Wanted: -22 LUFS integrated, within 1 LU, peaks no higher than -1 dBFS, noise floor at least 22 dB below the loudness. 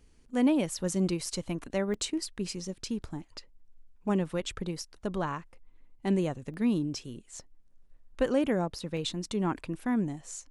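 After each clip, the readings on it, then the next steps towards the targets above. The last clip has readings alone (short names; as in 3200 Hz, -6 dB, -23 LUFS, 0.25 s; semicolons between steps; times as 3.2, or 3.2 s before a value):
dropouts 4; longest dropout 1.6 ms; loudness -31.5 LUFS; peak -14.5 dBFS; loudness target -22.0 LUFS
-> interpolate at 1.26/1.94/6.54/8.97, 1.6 ms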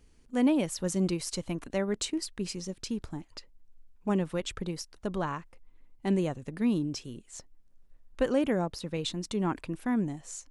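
dropouts 0; loudness -31.5 LUFS; peak -14.5 dBFS; loudness target -22.0 LUFS
-> gain +9.5 dB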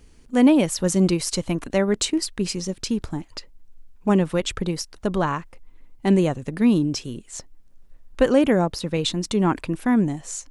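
loudness -22.5 LUFS; peak -5.0 dBFS; noise floor -50 dBFS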